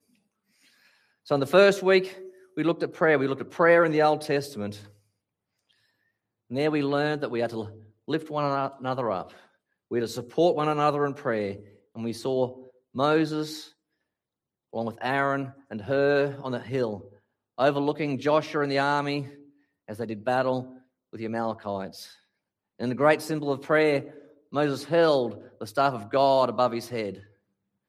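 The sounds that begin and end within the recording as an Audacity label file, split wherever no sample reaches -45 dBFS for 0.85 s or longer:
1.260000	4.900000	sound
6.500000	13.680000	sound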